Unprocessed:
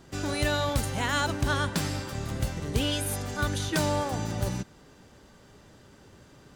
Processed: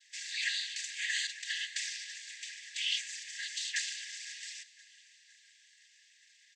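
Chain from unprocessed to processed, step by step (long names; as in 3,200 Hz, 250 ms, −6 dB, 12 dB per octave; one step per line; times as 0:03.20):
cochlear-implant simulation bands 16
linear-phase brick-wall high-pass 1,600 Hz
on a send: repeating echo 514 ms, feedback 57%, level −21.5 dB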